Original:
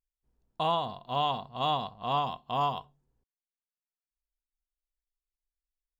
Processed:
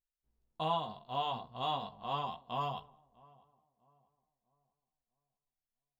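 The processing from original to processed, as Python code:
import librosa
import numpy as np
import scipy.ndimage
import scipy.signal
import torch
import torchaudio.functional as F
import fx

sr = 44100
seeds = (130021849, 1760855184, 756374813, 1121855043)

y = fx.chorus_voices(x, sr, voices=2, hz=0.35, base_ms=16, depth_ms=3.0, mix_pct=40)
y = fx.echo_filtered(y, sr, ms=647, feedback_pct=39, hz=1200.0, wet_db=-23.5)
y = y * 10.0 ** (-3.5 / 20.0)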